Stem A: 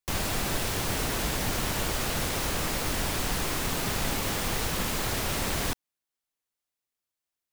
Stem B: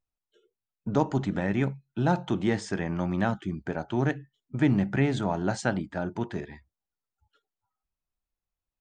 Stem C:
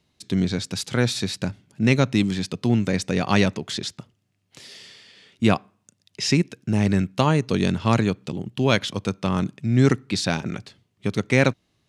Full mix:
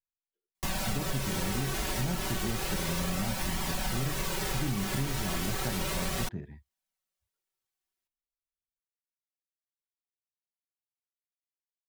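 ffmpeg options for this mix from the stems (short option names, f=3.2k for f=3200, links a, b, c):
-filter_complex "[0:a]aecho=1:1:5.3:0.79,flanger=delay=0.9:depth=2.3:regen=-41:speed=0.33:shape=triangular,adelay=550,volume=0.5dB[a];[1:a]agate=range=-18dB:threshold=-48dB:ratio=16:detection=peak,bass=f=250:g=14,treble=f=4k:g=-8,volume=-13dB[b];[a][b]amix=inputs=2:normalize=0,acompressor=threshold=-27dB:ratio=6"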